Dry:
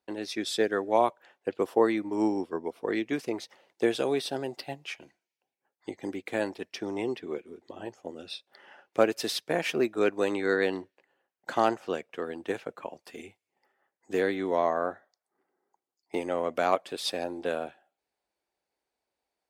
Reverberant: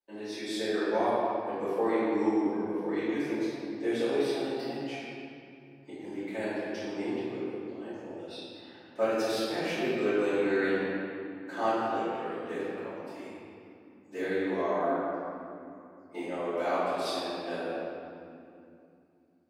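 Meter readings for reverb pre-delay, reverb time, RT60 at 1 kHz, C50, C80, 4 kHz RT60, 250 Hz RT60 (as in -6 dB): 3 ms, 2.6 s, 2.5 s, -4.5 dB, -2.5 dB, 1.7 s, 3.7 s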